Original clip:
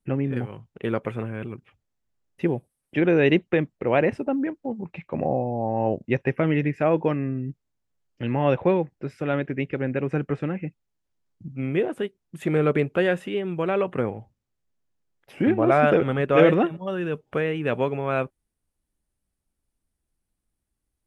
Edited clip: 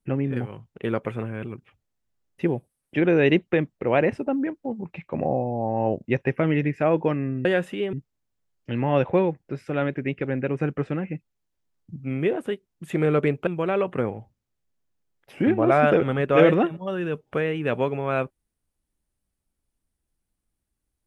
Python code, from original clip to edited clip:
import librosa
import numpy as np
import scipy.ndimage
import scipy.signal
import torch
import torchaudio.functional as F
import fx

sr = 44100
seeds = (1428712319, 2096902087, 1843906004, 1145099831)

y = fx.edit(x, sr, fx.move(start_s=12.99, length_s=0.48, to_s=7.45), tone=tone)